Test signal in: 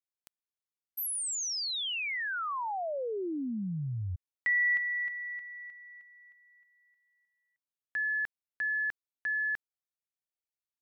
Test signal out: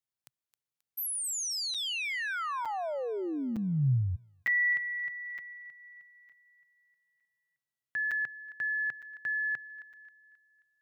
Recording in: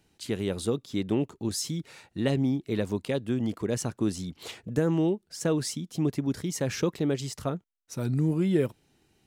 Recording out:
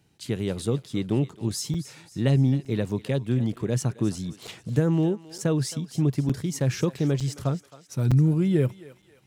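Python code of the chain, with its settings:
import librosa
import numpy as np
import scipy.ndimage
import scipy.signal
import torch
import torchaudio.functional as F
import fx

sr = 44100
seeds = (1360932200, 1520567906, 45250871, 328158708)

p1 = scipy.signal.sosfilt(scipy.signal.butter(2, 44.0, 'highpass', fs=sr, output='sos'), x)
p2 = fx.peak_eq(p1, sr, hz=130.0, db=10.0, octaves=0.69)
p3 = p2 + fx.echo_thinned(p2, sr, ms=267, feedback_pct=48, hz=780.0, wet_db=-14, dry=0)
y = fx.buffer_crackle(p3, sr, first_s=0.83, period_s=0.91, block=256, kind='zero')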